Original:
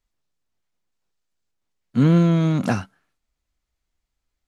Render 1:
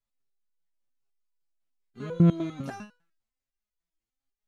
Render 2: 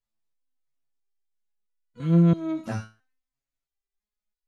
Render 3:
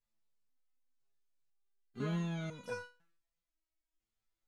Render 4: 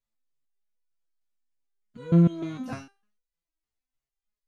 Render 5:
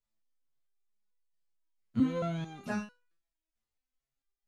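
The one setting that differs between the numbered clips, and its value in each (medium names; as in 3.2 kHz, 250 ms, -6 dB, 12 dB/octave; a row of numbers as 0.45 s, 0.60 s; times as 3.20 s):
resonator arpeggio, rate: 10 Hz, 3 Hz, 2 Hz, 6.6 Hz, 4.5 Hz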